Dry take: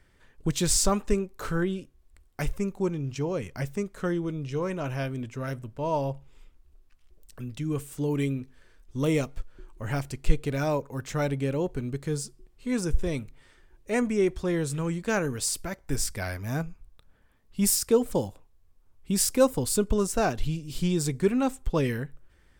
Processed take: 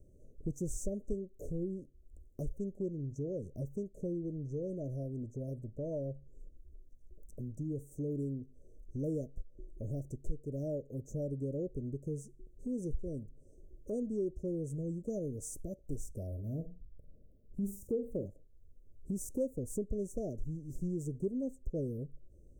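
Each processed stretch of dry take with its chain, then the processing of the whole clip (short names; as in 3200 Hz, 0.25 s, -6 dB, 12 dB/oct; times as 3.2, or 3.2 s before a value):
16.27–18.26 bell 5000 Hz -13.5 dB 2.5 oct + flutter echo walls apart 7.8 m, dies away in 0.28 s
whole clip: Chebyshev band-stop 610–6100 Hz, order 5; bell 11000 Hz -12 dB 2.4 oct; compressor 2:1, threshold -48 dBFS; gain +3.5 dB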